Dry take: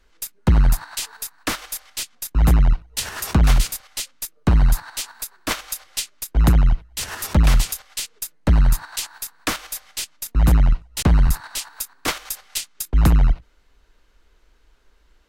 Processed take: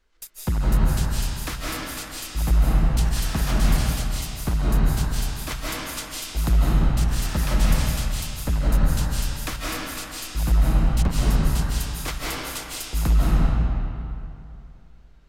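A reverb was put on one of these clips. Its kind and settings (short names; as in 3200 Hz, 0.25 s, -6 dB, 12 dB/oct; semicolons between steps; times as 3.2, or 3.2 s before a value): digital reverb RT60 2.7 s, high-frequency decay 0.7×, pre-delay 0.12 s, DRR -6.5 dB; gain -9 dB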